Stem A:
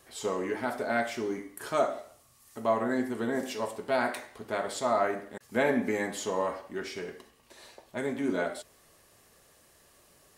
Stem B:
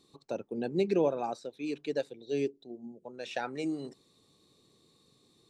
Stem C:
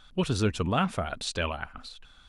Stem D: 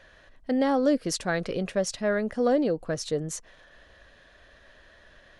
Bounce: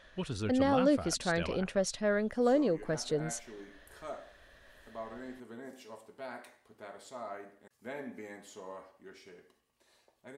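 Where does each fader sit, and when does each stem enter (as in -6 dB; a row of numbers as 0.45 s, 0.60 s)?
-16.0 dB, mute, -10.0 dB, -4.0 dB; 2.30 s, mute, 0.00 s, 0.00 s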